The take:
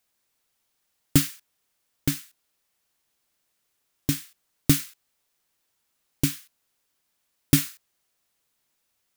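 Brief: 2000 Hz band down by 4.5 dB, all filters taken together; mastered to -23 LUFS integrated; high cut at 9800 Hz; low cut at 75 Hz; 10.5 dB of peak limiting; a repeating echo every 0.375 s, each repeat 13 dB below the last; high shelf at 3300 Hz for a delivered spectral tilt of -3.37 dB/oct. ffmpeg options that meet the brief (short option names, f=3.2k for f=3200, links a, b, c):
-af "highpass=75,lowpass=9.8k,equalizer=f=2k:t=o:g=-7.5,highshelf=f=3.3k:g=4.5,alimiter=limit=-13.5dB:level=0:latency=1,aecho=1:1:375|750|1125:0.224|0.0493|0.0108,volume=11dB"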